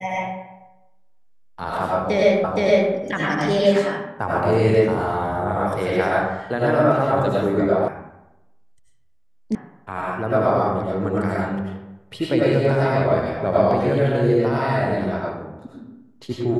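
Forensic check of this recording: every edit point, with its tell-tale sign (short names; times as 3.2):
2.44 repeat of the last 0.47 s
7.88 sound cut off
9.55 sound cut off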